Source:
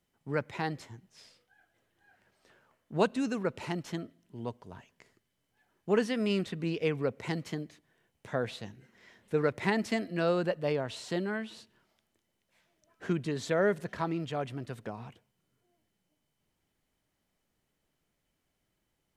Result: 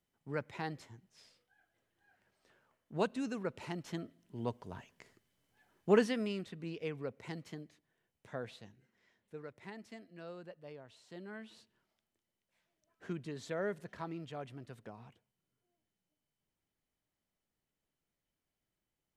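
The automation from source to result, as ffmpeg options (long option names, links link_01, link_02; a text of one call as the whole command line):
ffmpeg -i in.wav -af "volume=11dB,afade=type=in:start_time=3.77:duration=0.83:silence=0.421697,afade=type=out:start_time=5.9:duration=0.43:silence=0.281838,afade=type=out:start_time=8.38:duration=1.06:silence=0.316228,afade=type=in:start_time=11.08:duration=0.44:silence=0.316228" out.wav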